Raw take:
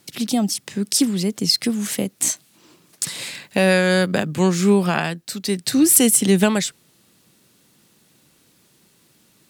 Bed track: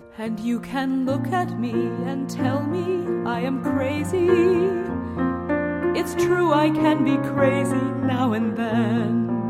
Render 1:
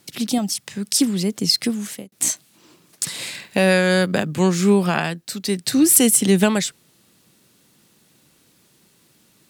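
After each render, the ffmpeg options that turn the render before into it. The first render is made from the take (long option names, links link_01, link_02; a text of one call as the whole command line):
ffmpeg -i in.wav -filter_complex "[0:a]asettb=1/sr,asplit=3[link_01][link_02][link_03];[link_01]atrim=end=0.384[link_04];[link_02]atrim=start=0.38:end=0.99,asetpts=PTS-STARTPTS,afade=type=in:duration=0.004:curve=qsin,afade=type=out:start_time=0.606:duration=0.004:curve=qsin,equalizer=frequency=320:width=1.1:gain=-7.5[link_05];[link_03]atrim=start=0.986[link_06];[link_04][link_05]acrossfade=duration=0.004:curve1=hsin:curve2=qsin[link_07];[link_07][link_06]acrossfade=duration=0.004:curve1=qsin:curve2=hsin,asettb=1/sr,asplit=3[link_08][link_09][link_10];[link_08]atrim=end=3.094[link_11];[link_09]atrim=start=3.09:end=3.51,asetpts=PTS-STARTPTS,afade=type=in:duration=0.004:curve=qsin,afade=type=out:start_time=0.416:duration=0.004:curve=qsin,asplit=2[link_12][link_13];[link_13]adelay=50,volume=-9dB[link_14];[link_12][link_14]amix=inputs=2:normalize=0,atrim=end_sample=18522[link_15];[link_10]atrim=start=3.506[link_16];[link_11][link_15]acrossfade=duration=0.004:curve1=hsin:curve2=qsin[link_17];[link_17][link_16]acrossfade=duration=0.004:curve1=qsin:curve2=hsin,asplit=2[link_18][link_19];[link_18]atrim=end=2.12,asetpts=PTS-STARTPTS,afade=type=out:start_time=1.66:duration=0.46[link_20];[link_19]atrim=start=2.12,asetpts=PTS-STARTPTS,afade=type=in:duration=0.004:curve=hsin[link_21];[link_20][link_21]concat=n=2:v=0:a=1" out.wav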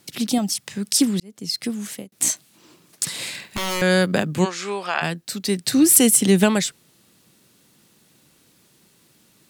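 ffmpeg -i in.wav -filter_complex "[0:a]asettb=1/sr,asplit=3[link_01][link_02][link_03];[link_01]atrim=end=3.204[link_04];[link_02]atrim=start=3.2:end=3.82,asetpts=PTS-STARTPTS,afade=type=in:duration=0.004:curve=qsin,afade=type=out:start_time=0.616:duration=0.004:curve=qsin,aeval=exprs='0.106*(abs(mod(val(0)/0.106+3,4)-2)-1)':channel_layout=same[link_05];[link_03]atrim=start=3.816[link_06];[link_04][link_05]acrossfade=duration=0.004:curve1=hsin:curve2=qsin[link_07];[link_07][link_06]acrossfade=duration=0.004:curve1=qsin:curve2=hsin,asplit=3[link_08][link_09][link_10];[link_08]afade=type=out:start_time=4.44:duration=0.02[link_11];[link_09]highpass=700,lowpass=5700,afade=type=in:start_time=4.44:duration=0.02,afade=type=out:start_time=5.01:duration=0.02[link_12];[link_10]afade=type=in:start_time=5.01:duration=0.02[link_13];[link_11][link_12][link_13]amix=inputs=3:normalize=0,asplit=2[link_14][link_15];[link_14]atrim=end=1.2,asetpts=PTS-STARTPTS,afade=type=out:start_time=1.196:duration=0.004:curve=hsin[link_16];[link_15]atrim=start=1.2,asetpts=PTS-STARTPTS,afade=type=in:duration=0.8[link_17];[link_16][link_17]concat=n=2:v=0:a=1" out.wav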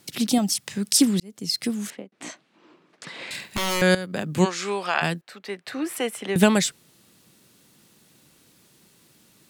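ffmpeg -i in.wav -filter_complex "[0:a]asettb=1/sr,asplit=3[link_01][link_02][link_03];[link_01]atrim=end=1.904[link_04];[link_02]atrim=start=1.9:end=3.31,asetpts=PTS-STARTPTS,afade=type=in:duration=0.004:curve=qsin,afade=type=out:start_time=1.406:duration=0.004:curve=qsin,highpass=250,lowpass=2200[link_05];[link_03]atrim=start=3.306[link_06];[link_04][link_05]acrossfade=duration=0.004:curve1=hsin:curve2=qsin[link_07];[link_07][link_06]acrossfade=duration=0.004:curve1=qsin:curve2=hsin,asettb=1/sr,asplit=3[link_08][link_09][link_10];[link_08]atrim=end=5.214[link_11];[link_09]atrim=start=5.21:end=6.36,asetpts=PTS-STARTPTS,afade=type=in:duration=0.004:curve=qsin,afade=type=out:start_time=1.146:duration=0.004:curve=qsin,acrossover=split=470 2600:gain=0.0891 1 0.0708[link_12][link_13][link_14];[link_12][link_13][link_14]amix=inputs=3:normalize=0[link_15];[link_10]atrim=start=6.356[link_16];[link_11][link_15]acrossfade=duration=0.004:curve1=hsin:curve2=qsin[link_17];[link_17][link_16]acrossfade=duration=0.004:curve1=qsin:curve2=hsin,asplit=2[link_18][link_19];[link_18]atrim=end=3.95,asetpts=PTS-STARTPTS,afade=type=out:start_time=3.946:duration=0.004:curve=hsin:silence=0.188365[link_20];[link_19]atrim=start=3.95,asetpts=PTS-STARTPTS,afade=type=in:duration=0.46:curve=qua:silence=0.188365[link_21];[link_20][link_21]concat=n=2:v=0:a=1" out.wav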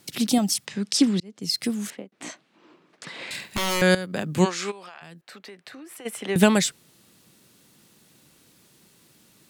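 ffmpeg -i in.wav -filter_complex "[0:a]asplit=3[link_01][link_02][link_03];[link_01]afade=type=out:start_time=0.65:duration=0.02[link_04];[link_02]highpass=140,lowpass=5500,afade=type=in:start_time=0.65:duration=0.02,afade=type=out:start_time=1.41:duration=0.02[link_05];[link_03]afade=type=in:start_time=1.41:duration=0.02[link_06];[link_04][link_05][link_06]amix=inputs=3:normalize=0,asplit=3[link_07][link_08][link_09];[link_07]afade=type=out:start_time=4.7:duration=0.02[link_10];[link_08]acompressor=threshold=-39dB:ratio=12:attack=3.2:release=140:knee=1:detection=peak,afade=type=in:start_time=4.7:duration=0.02,afade=type=out:start_time=6.05:duration=0.02[link_11];[link_09]afade=type=in:start_time=6.05:duration=0.02[link_12];[link_10][link_11][link_12]amix=inputs=3:normalize=0" out.wav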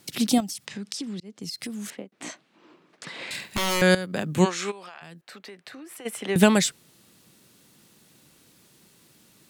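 ffmpeg -i in.wav -filter_complex "[0:a]asettb=1/sr,asplit=3[link_01][link_02][link_03];[link_01]atrim=end=0.404[link_04];[link_02]atrim=start=0.4:end=1.92,asetpts=PTS-STARTPTS,afade=type=in:duration=0.004:curve=qsin,afade=type=out:start_time=1.516:duration=0.004:curve=qsin,acompressor=threshold=-31dB:ratio=6:attack=3.2:release=140:knee=1:detection=peak[link_05];[link_03]atrim=start=1.916[link_06];[link_04][link_05]acrossfade=duration=0.004:curve1=hsin:curve2=qsin[link_07];[link_07][link_06]acrossfade=duration=0.004:curve1=qsin:curve2=hsin,asettb=1/sr,asplit=3[link_08][link_09][link_10];[link_08]atrim=end=4.324[link_11];[link_09]atrim=start=4.32:end=4.77,asetpts=PTS-STARTPTS,afade=type=in:duration=0.004:curve=qsin,afade=type=out:start_time=0.446:duration=0.004:curve=qsin,bandreject=frequency=4800:width=8.5[link_12];[link_10]atrim=start=4.766[link_13];[link_11][link_12]acrossfade=duration=0.004:curve1=hsin:curve2=qsin[link_14];[link_14][link_13]acrossfade=duration=0.004:curve1=qsin:curve2=hsin" out.wav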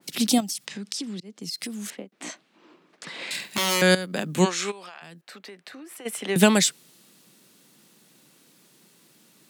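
ffmpeg -i in.wav -af "highpass=frequency=150:width=0.5412,highpass=frequency=150:width=1.3066,adynamicequalizer=threshold=0.01:dfrequency=2400:dqfactor=0.7:tfrequency=2400:tqfactor=0.7:attack=5:release=100:ratio=0.375:range=2:mode=boostabove:tftype=highshelf" out.wav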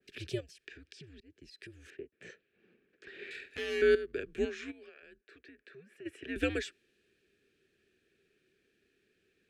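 ffmpeg -i in.wav -filter_complex "[0:a]asplit=3[link_01][link_02][link_03];[link_01]bandpass=frequency=530:width_type=q:width=8,volume=0dB[link_04];[link_02]bandpass=frequency=1840:width_type=q:width=8,volume=-6dB[link_05];[link_03]bandpass=frequency=2480:width_type=q:width=8,volume=-9dB[link_06];[link_04][link_05][link_06]amix=inputs=3:normalize=0,afreqshift=-130" out.wav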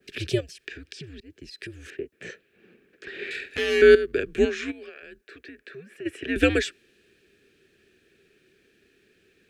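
ffmpeg -i in.wav -af "volume=11.5dB" out.wav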